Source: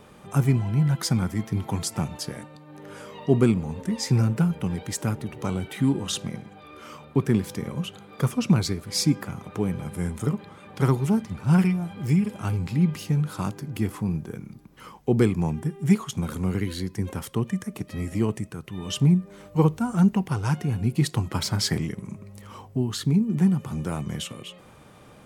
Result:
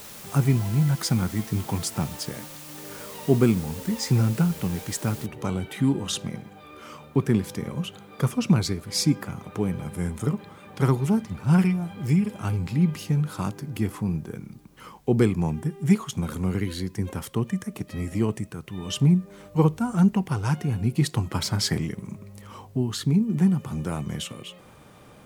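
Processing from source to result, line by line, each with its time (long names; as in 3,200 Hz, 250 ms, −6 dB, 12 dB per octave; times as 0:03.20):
0:05.26: noise floor change −43 dB −69 dB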